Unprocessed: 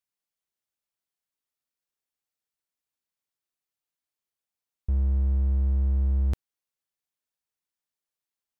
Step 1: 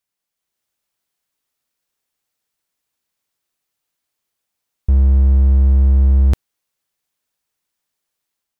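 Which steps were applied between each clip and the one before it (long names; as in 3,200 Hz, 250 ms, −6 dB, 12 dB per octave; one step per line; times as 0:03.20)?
automatic gain control gain up to 5 dB
level +7 dB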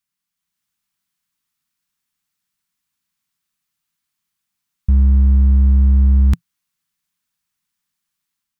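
drawn EQ curve 120 Hz 0 dB, 170 Hz +7 dB, 530 Hz −15 dB, 1,100 Hz 0 dB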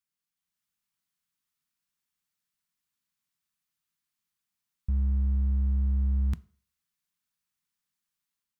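brickwall limiter −12.5 dBFS, peak gain reduction 6.5 dB
on a send at −16.5 dB: convolution reverb RT60 0.50 s, pre-delay 4 ms
on the sum: level −8 dB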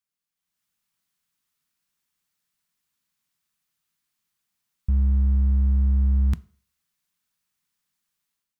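automatic gain control gain up to 6 dB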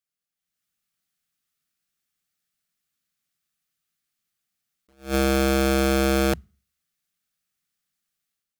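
Butterworth band-reject 970 Hz, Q 3.9
wrap-around overflow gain 15 dB
level that may rise only so fast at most 220 dB per second
level −1.5 dB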